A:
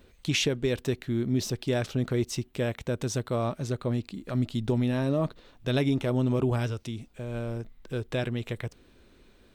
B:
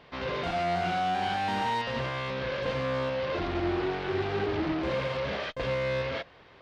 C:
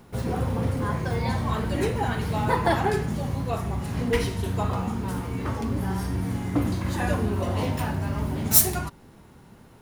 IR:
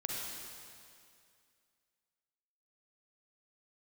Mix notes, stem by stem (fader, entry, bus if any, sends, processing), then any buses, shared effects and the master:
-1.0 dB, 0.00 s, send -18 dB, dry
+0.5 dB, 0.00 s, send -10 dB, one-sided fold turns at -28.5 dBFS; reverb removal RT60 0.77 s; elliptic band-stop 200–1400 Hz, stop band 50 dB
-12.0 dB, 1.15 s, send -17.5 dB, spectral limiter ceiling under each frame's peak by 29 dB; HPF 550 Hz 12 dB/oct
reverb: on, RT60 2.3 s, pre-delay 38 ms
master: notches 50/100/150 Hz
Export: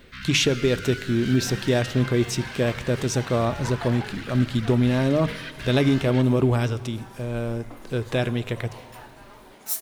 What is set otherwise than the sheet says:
stem A -1.0 dB -> +5.0 dB; stem C: missing spectral limiter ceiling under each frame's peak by 29 dB

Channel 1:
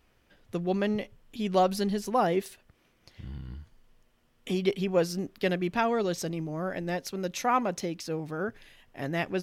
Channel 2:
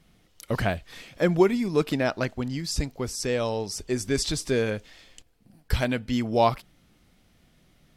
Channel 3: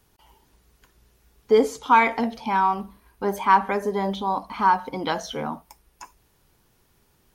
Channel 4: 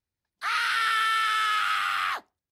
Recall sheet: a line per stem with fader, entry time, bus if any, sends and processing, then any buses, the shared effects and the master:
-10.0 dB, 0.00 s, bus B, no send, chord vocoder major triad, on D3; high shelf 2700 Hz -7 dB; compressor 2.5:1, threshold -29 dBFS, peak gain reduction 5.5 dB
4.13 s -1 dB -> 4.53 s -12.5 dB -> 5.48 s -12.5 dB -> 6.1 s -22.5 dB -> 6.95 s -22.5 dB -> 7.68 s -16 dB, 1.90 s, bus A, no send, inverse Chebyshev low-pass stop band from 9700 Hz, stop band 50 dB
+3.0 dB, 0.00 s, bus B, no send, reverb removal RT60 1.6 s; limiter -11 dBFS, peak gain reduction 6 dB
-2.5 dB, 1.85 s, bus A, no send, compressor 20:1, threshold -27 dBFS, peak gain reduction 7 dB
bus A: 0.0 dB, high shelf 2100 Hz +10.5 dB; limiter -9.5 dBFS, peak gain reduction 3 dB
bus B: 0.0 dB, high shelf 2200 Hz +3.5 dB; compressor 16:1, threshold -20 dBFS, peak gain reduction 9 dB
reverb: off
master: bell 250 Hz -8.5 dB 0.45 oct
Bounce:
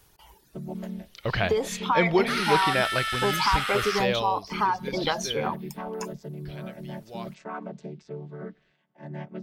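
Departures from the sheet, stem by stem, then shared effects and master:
stem 1 -10.0 dB -> -2.0 dB; stem 2: entry 1.90 s -> 0.75 s

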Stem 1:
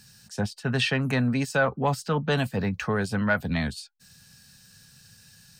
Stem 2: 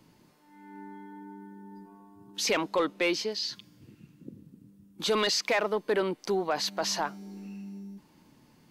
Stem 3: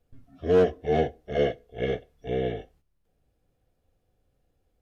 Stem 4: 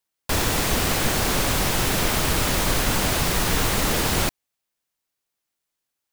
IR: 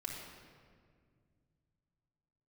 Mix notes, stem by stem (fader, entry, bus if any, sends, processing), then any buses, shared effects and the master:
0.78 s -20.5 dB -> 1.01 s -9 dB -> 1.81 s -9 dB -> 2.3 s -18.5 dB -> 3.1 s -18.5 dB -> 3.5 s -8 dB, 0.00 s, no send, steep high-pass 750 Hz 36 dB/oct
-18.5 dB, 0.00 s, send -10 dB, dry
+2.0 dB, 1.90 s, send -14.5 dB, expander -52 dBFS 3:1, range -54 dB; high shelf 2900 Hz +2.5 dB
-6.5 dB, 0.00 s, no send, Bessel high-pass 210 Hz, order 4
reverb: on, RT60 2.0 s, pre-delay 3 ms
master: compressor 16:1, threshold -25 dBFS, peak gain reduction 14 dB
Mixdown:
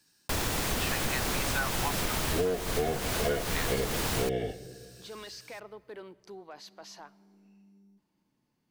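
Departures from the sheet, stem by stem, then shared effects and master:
stem 1 -20.5 dB -> -13.5 dB; stem 2: send -10 dB -> -16.5 dB; stem 4: missing Bessel high-pass 210 Hz, order 4

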